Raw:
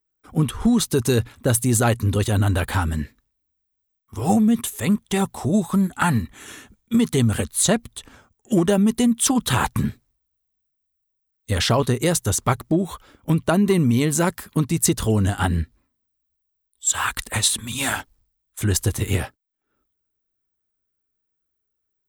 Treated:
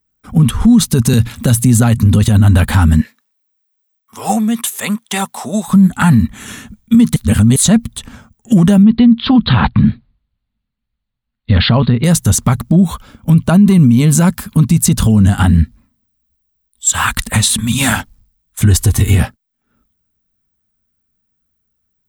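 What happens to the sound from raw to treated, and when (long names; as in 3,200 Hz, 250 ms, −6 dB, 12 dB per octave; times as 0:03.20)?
0:01.13–0:01.98: multiband upward and downward compressor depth 70%
0:03.01–0:05.68: high-pass filter 590 Hz
0:07.16–0:07.56: reverse
0:08.83–0:12.04: Butterworth low-pass 4,500 Hz 96 dB per octave
0:12.61–0:15.21: notch filter 1,900 Hz
0:18.66–0:19.18: comb filter 2.7 ms
whole clip: low shelf with overshoot 270 Hz +6 dB, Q 3; boost into a limiter +10 dB; level −1 dB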